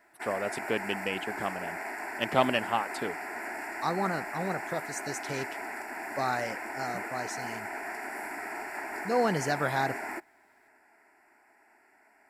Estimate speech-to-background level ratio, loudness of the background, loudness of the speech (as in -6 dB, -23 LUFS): 4.5 dB, -37.0 LUFS, -32.5 LUFS